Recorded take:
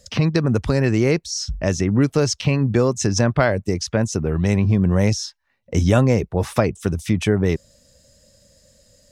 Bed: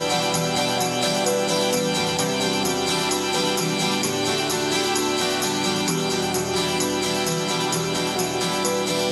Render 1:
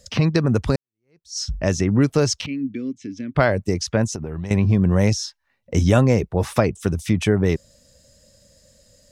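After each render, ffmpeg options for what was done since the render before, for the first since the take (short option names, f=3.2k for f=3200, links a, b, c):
-filter_complex "[0:a]asettb=1/sr,asplit=3[a][b][c];[a]atrim=end=2.464[d];[b]atrim=start=2.46:end=3.35,asetpts=PTS-STARTPTS,afade=t=in:d=0.004:c=qsin,afade=t=out:st=0.886:d=0.004:c=qsin,asplit=3[e][f][g];[e]bandpass=f=270:t=q:w=8,volume=0dB[h];[f]bandpass=f=2.29k:t=q:w=8,volume=-6dB[i];[g]bandpass=f=3.01k:t=q:w=8,volume=-9dB[j];[h][i][j]amix=inputs=3:normalize=0[k];[c]atrim=start=3.346[l];[d][k]acrossfade=d=0.004:c1=hsin:c2=qsin[m];[m][l]acrossfade=d=0.004:c1=qsin:c2=hsin,asettb=1/sr,asplit=3[n][o][p];[n]atrim=end=4.074[q];[o]atrim=start=4.07:end=4.51,asetpts=PTS-STARTPTS,afade=t=in:d=0.004:c=qsin,afade=t=out:st=0.436:d=0.004:c=qsin,acompressor=threshold=-24dB:ratio=12:attack=3.2:release=140:knee=1:detection=peak[r];[p]atrim=start=4.506[s];[q][r]acrossfade=d=0.004:c1=hsin:c2=qsin[t];[t][s]acrossfade=d=0.004:c1=qsin:c2=hsin,asplit=2[u][v];[u]atrim=end=0.76,asetpts=PTS-STARTPTS,afade=t=out:st=0.756:d=0.004:c=hsin[w];[v]atrim=start=0.76,asetpts=PTS-STARTPTS,afade=t=in:d=0.62:c=exp[x];[w][x]concat=n=2:v=0:a=1"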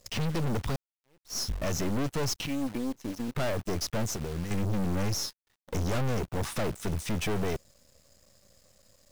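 -af "aeval=exprs='(tanh(25.1*val(0)+0.65)-tanh(0.65))/25.1':c=same,acrusher=bits=8:dc=4:mix=0:aa=0.000001"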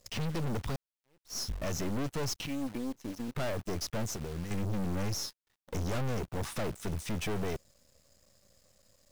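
-af "volume=-4dB"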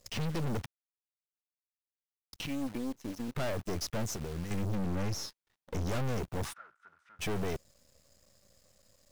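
-filter_complex "[0:a]asettb=1/sr,asplit=3[a][b][c];[a]atrim=end=4.754[d];[b]atrim=start=4.75:end=5.87,asetpts=PTS-STARTPTS,afade=t=in:d=0.004:c=qsin,afade=t=out:st=1.116:d=0.004:c=qsin,highshelf=f=5.6k:g=-6.5[e];[c]atrim=start=5.866[f];[d][e]acrossfade=d=0.004:c1=hsin:c2=qsin[g];[g][f]acrossfade=d=0.004:c1=qsin:c2=hsin,asplit=3[h][i][j];[h]afade=t=out:st=6.52:d=0.02[k];[i]bandpass=f=1.4k:t=q:w=13,afade=t=in:st=6.52:d=0.02,afade=t=out:st=7.19:d=0.02[l];[j]afade=t=in:st=7.19:d=0.02[m];[k][l][m]amix=inputs=3:normalize=0,asplit=3[n][o][p];[n]atrim=end=0.66,asetpts=PTS-STARTPTS,afade=t=out:st=0.656:d=0.004:c=hsin[q];[o]atrim=start=0.66:end=2.33,asetpts=PTS-STARTPTS,volume=0[r];[p]atrim=start=2.33,asetpts=PTS-STARTPTS,afade=t=in:d=0.004:c=hsin[s];[q][r][s]concat=n=3:v=0:a=1"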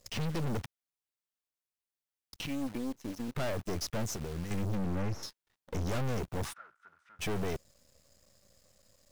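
-filter_complex "[0:a]asettb=1/sr,asplit=3[a][b][c];[a]atrim=end=4.774[d];[b]atrim=start=4.77:end=5.23,asetpts=PTS-STARTPTS,afade=t=in:d=0.004:c=qsin,afade=t=out:st=0.456:d=0.004:c=qsin,acrossover=split=2500[e][f];[f]acompressor=threshold=-53dB:ratio=4:attack=1:release=60[g];[e][g]amix=inputs=2:normalize=0[h];[c]atrim=start=5.226[i];[d][h]acrossfade=d=0.004:c1=hsin:c2=qsin[j];[j][i]acrossfade=d=0.004:c1=qsin:c2=hsin"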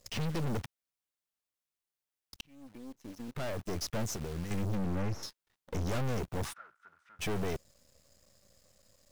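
-filter_complex "[0:a]asplit=2[a][b];[a]atrim=end=2.41,asetpts=PTS-STARTPTS,afade=t=out:st=2.406:d=0.004:c=hsin[c];[b]atrim=start=2.41,asetpts=PTS-STARTPTS,afade=t=in:d=1.49[d];[c][d]concat=n=2:v=0:a=1"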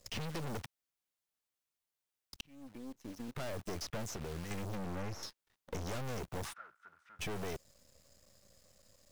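-filter_complex "[0:a]acrossover=split=470|4000[a][b][c];[a]acompressor=threshold=-40dB:ratio=4[d];[b]acompressor=threshold=-42dB:ratio=4[e];[c]acompressor=threshold=-47dB:ratio=4[f];[d][e][f]amix=inputs=3:normalize=0"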